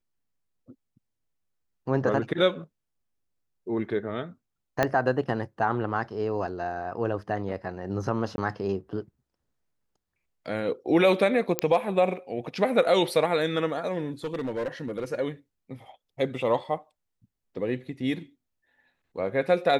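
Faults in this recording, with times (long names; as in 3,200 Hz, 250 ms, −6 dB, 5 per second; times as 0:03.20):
0:04.83: click −9 dBFS
0:08.36–0:08.38: drop-out 20 ms
0:11.59: click −7 dBFS
0:14.24–0:15.05: clipping −26 dBFS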